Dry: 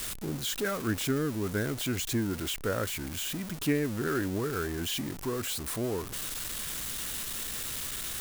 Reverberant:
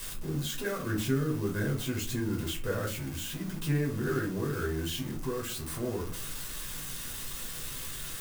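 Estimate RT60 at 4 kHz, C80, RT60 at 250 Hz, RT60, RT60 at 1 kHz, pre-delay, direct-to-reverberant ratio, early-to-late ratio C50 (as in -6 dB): 0.20 s, 15.0 dB, 0.55 s, 0.45 s, 0.40 s, 3 ms, -1.5 dB, 9.5 dB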